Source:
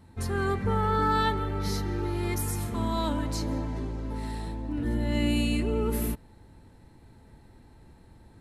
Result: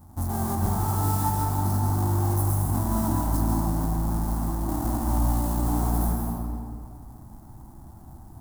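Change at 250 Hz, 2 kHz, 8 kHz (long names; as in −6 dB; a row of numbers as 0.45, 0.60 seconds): +2.0, −9.0, +5.5 decibels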